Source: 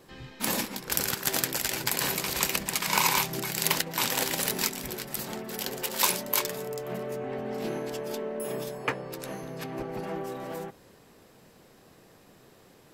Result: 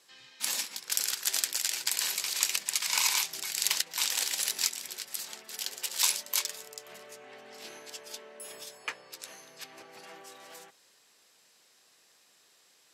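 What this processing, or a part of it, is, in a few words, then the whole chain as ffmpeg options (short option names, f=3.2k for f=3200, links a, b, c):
piezo pickup straight into a mixer: -af "lowpass=6.8k,aderivative,volume=6dB"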